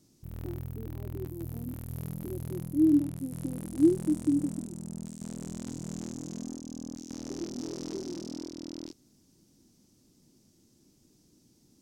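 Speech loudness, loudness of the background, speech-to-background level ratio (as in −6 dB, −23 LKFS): −28.5 LKFS, −40.0 LKFS, 11.5 dB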